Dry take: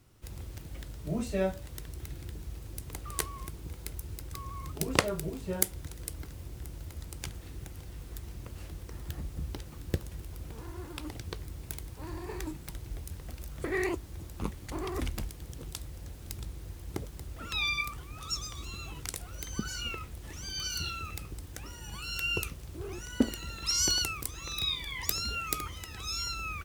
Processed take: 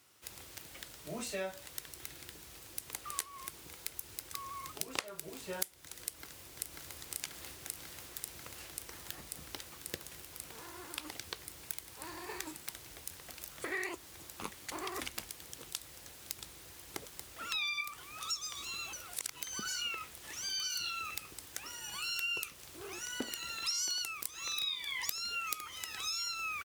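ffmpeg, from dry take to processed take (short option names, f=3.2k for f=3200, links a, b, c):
-filter_complex "[0:a]asplit=2[a][b];[b]afade=t=in:st=6.02:d=0.01,afade=t=out:st=6.99:d=0.01,aecho=0:1:540|1080|1620|2160|2700|3240|3780|4320|4860|5400|5940|6480:0.794328|0.675179|0.573902|0.487817|0.414644|0.352448|0.299581|0.254643|0.216447|0.18398|0.156383|0.132925[c];[a][c]amix=inputs=2:normalize=0,asplit=3[d][e][f];[d]atrim=end=18.932[g];[e]atrim=start=18.928:end=19.422,asetpts=PTS-STARTPTS,areverse[h];[f]atrim=start=19.418[i];[g][h]acrossfade=d=0.004:c1=hsin:c2=hsin[j];[j][i]acrossfade=d=0.004:c1=hsin:c2=hsin,highpass=f=1.4k:p=1,acompressor=threshold=-40dB:ratio=4,volume=5dB"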